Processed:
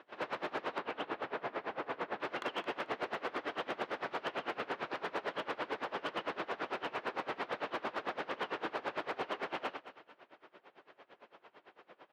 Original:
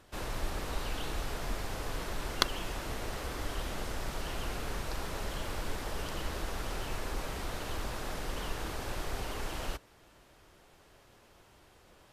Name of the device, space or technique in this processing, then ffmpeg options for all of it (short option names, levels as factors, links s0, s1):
helicopter radio: -filter_complex "[0:a]highpass=340,lowpass=2800,lowpass=4000,aeval=exprs='val(0)*pow(10,-23*(0.5-0.5*cos(2*PI*8.9*n/s))/20)':c=same,asoftclip=type=hard:threshold=0.0126,highpass=110,asettb=1/sr,asplit=3[s0][s1][s2];[s0]atrim=end=0.784[s3];[s1]atrim=start=0.78:end=2.2,asetpts=PTS-STARTPTS,afade=t=in:d=0.004:c=qsin,afade=t=out:st=1.416:d=0.004:c=qsin,highshelf=f=4000:g=-12[s4];[s2]atrim=start=2.196[s5];[s3][s4]acrossfade=d=0.004:c1=hsin:c2=qsin[s6];[s6][s5]acrossfade=d=0.004:c1=qsin:c2=hsin,aecho=1:1:220|440|660:0.211|0.0507|0.0122,volume=2.82"